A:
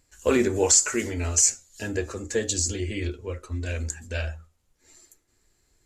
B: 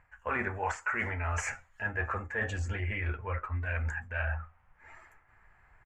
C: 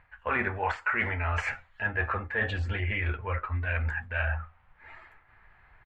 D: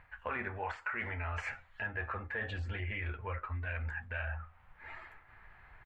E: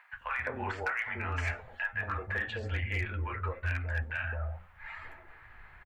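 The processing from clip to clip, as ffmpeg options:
ffmpeg -i in.wav -af "firequalizer=gain_entry='entry(140,0);entry(310,-14);entry(790,10);entry(1700,10);entry(2400,2);entry(4000,-25);entry(7200,-27)':delay=0.05:min_phase=1,areverse,acompressor=threshold=-36dB:ratio=6,areverse,volume=5.5dB" out.wav
ffmpeg -i in.wav -af "highshelf=frequency=5100:width_type=q:width=3:gain=-10,volume=3dB" out.wav
ffmpeg -i in.wav -af "acompressor=threshold=-41dB:ratio=2.5,volume=1dB" out.wav
ffmpeg -i in.wav -filter_complex "[0:a]acrossover=split=190|750[link_01][link_02][link_03];[link_01]adelay=130[link_04];[link_02]adelay=210[link_05];[link_04][link_05][link_03]amix=inputs=3:normalize=0,volume=29dB,asoftclip=hard,volume=-29dB,volume=5dB" out.wav

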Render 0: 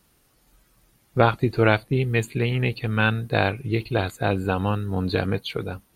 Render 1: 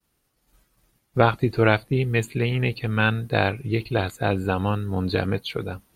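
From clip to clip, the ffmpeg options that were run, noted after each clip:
ffmpeg -i in.wav -af "agate=range=-33dB:threshold=-55dB:ratio=3:detection=peak" out.wav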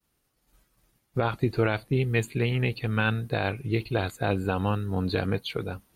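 ffmpeg -i in.wav -af "alimiter=limit=-10.5dB:level=0:latency=1:release=48,volume=-2.5dB" out.wav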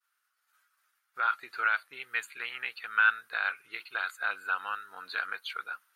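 ffmpeg -i in.wav -af "highpass=frequency=1400:width_type=q:width=5.2,volume=-6dB" out.wav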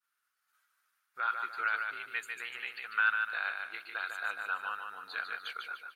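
ffmpeg -i in.wav -af "aecho=1:1:148|296|444|592|740:0.562|0.219|0.0855|0.0334|0.013,volume=-4.5dB" out.wav

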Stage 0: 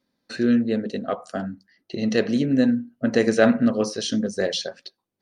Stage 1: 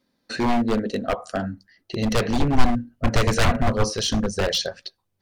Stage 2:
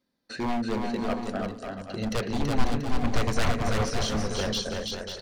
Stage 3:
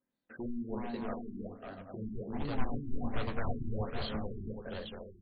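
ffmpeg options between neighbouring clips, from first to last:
ffmpeg -i in.wav -af "aeval=exprs='0.119*(abs(mod(val(0)/0.119+3,4)-2)-1)':channel_layout=same,asubboost=boost=11.5:cutoff=76,volume=4dB" out.wav
ffmpeg -i in.wav -af "aecho=1:1:330|544.5|683.9|774.6|833.5:0.631|0.398|0.251|0.158|0.1,volume=-7.5dB" out.wav
ffmpeg -i in.wav -af "flanger=delay=7.3:depth=6.7:regen=-60:speed=1.1:shape=sinusoidal,afftfilt=real='re*lt(b*sr/1024,380*pow(4800/380,0.5+0.5*sin(2*PI*1.3*pts/sr)))':imag='im*lt(b*sr/1024,380*pow(4800/380,0.5+0.5*sin(2*PI*1.3*pts/sr)))':win_size=1024:overlap=0.75,volume=-5dB" out.wav

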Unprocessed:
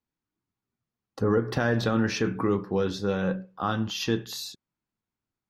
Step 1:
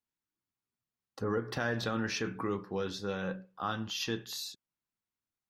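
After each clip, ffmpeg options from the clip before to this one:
ffmpeg -i in.wav -af "tiltshelf=frequency=810:gain=-3.5,volume=-7dB" out.wav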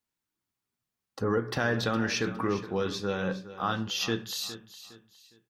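ffmpeg -i in.wav -af "aecho=1:1:411|822|1233:0.188|0.064|0.0218,volume=5dB" out.wav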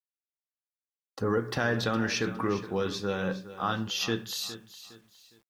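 ffmpeg -i in.wav -af "acrusher=bits=10:mix=0:aa=0.000001" out.wav

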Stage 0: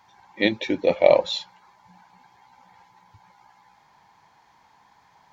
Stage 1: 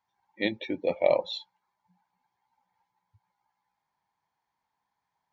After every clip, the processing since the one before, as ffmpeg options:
ffmpeg -i in.wav -af "afftdn=noise_reduction=17:noise_floor=-36,volume=-7.5dB" out.wav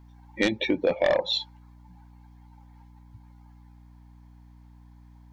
ffmpeg -i in.wav -af "aeval=exprs='0.335*sin(PI/2*2.24*val(0)/0.335)':channel_layout=same,aeval=exprs='val(0)+0.00251*(sin(2*PI*60*n/s)+sin(2*PI*2*60*n/s)/2+sin(2*PI*3*60*n/s)/3+sin(2*PI*4*60*n/s)/4+sin(2*PI*5*60*n/s)/5)':channel_layout=same,acompressor=threshold=-26dB:ratio=2.5,volume=2.5dB" out.wav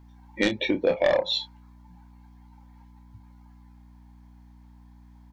ffmpeg -i in.wav -filter_complex "[0:a]asplit=2[link_01][link_02];[link_02]adelay=29,volume=-8.5dB[link_03];[link_01][link_03]amix=inputs=2:normalize=0" out.wav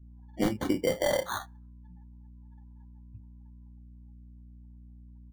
ffmpeg -i in.wav -af "acrusher=samples=17:mix=1:aa=0.000001,afftdn=noise_reduction=26:noise_floor=-52,lowshelf=frequency=300:gain=9.5,volume=-7.5dB" out.wav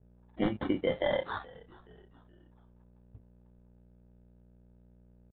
ffmpeg -i in.wav -filter_complex "[0:a]aresample=8000,aeval=exprs='sgn(val(0))*max(abs(val(0))-0.00251,0)':channel_layout=same,aresample=44100,asplit=4[link_01][link_02][link_03][link_04];[link_02]adelay=424,afreqshift=-78,volume=-22.5dB[link_05];[link_03]adelay=848,afreqshift=-156,volume=-29.4dB[link_06];[link_04]adelay=1272,afreqshift=-234,volume=-36.4dB[link_07];[link_01][link_05][link_06][link_07]amix=inputs=4:normalize=0,volume=-2dB" out.wav

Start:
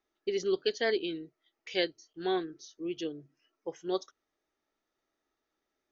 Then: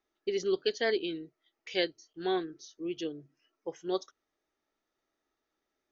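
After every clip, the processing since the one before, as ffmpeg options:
ffmpeg -i in.wav -af anull out.wav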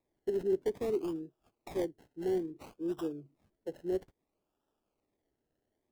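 ffmpeg -i in.wav -filter_complex "[0:a]acrossover=split=460[link_01][link_02];[link_02]acompressor=threshold=-47dB:ratio=2.5[link_03];[link_01][link_03]amix=inputs=2:normalize=0,acrossover=split=420|720[link_04][link_05][link_06];[link_06]acrusher=samples=29:mix=1:aa=0.000001:lfo=1:lforange=17.4:lforate=0.59[link_07];[link_04][link_05][link_07]amix=inputs=3:normalize=0,volume=1.5dB" out.wav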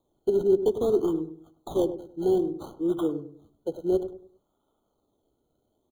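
ffmpeg -i in.wav -filter_complex "[0:a]asplit=2[link_01][link_02];[link_02]adelay=100,lowpass=frequency=900:poles=1,volume=-10dB,asplit=2[link_03][link_04];[link_04]adelay=100,lowpass=frequency=900:poles=1,volume=0.36,asplit=2[link_05][link_06];[link_06]adelay=100,lowpass=frequency=900:poles=1,volume=0.36,asplit=2[link_07][link_08];[link_08]adelay=100,lowpass=frequency=900:poles=1,volume=0.36[link_09];[link_03][link_05][link_07][link_09]amix=inputs=4:normalize=0[link_10];[link_01][link_10]amix=inputs=2:normalize=0,afftfilt=real='re*eq(mod(floor(b*sr/1024/1500),2),0)':imag='im*eq(mod(floor(b*sr/1024/1500),2),0)':win_size=1024:overlap=0.75,volume=9dB" out.wav

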